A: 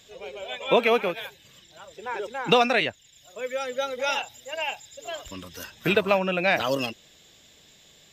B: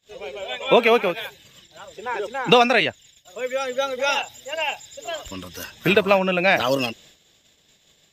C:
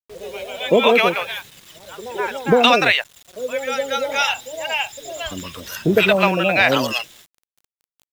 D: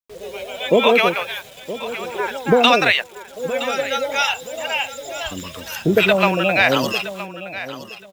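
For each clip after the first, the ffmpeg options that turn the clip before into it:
-af "agate=range=-26dB:threshold=-53dB:ratio=16:detection=peak,volume=4.5dB"
-filter_complex "[0:a]acrossover=split=670[a][b];[b]adelay=120[c];[a][c]amix=inputs=2:normalize=0,acrusher=bits=7:mix=0:aa=0.000001,volume=4dB"
-af "aecho=1:1:968|1936:0.2|0.0399"

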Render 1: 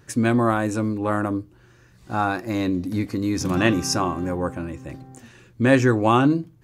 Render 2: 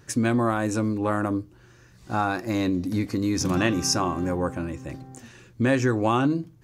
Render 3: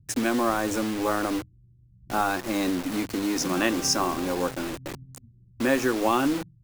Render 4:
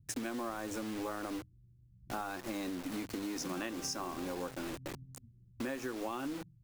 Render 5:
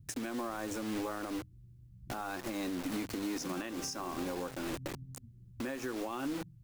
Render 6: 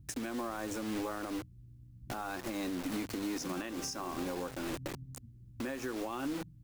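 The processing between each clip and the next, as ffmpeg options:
-af "equalizer=f=5.8k:t=o:w=0.77:g=3.5,acompressor=threshold=-20dB:ratio=2.5"
-filter_complex "[0:a]acrossover=split=190[a][b];[a]aeval=exprs='(mod(53.1*val(0)+1,2)-1)/53.1':c=same[c];[b]acrusher=bits=5:mix=0:aa=0.000001[d];[c][d]amix=inputs=2:normalize=0"
-af "acompressor=threshold=-30dB:ratio=5,volume=-6dB"
-af "alimiter=level_in=10.5dB:limit=-24dB:level=0:latency=1:release=318,volume=-10.5dB,volume=6.5dB"
-af "aeval=exprs='val(0)+0.000891*(sin(2*PI*60*n/s)+sin(2*PI*2*60*n/s)/2+sin(2*PI*3*60*n/s)/3+sin(2*PI*4*60*n/s)/4+sin(2*PI*5*60*n/s)/5)':c=same"

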